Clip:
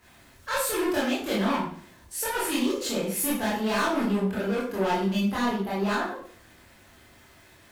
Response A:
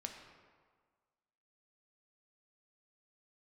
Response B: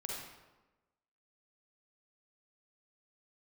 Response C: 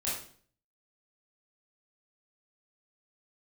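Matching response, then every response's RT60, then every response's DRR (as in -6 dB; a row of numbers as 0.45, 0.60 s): C; 1.6, 1.1, 0.50 s; 2.5, -3.0, -8.5 dB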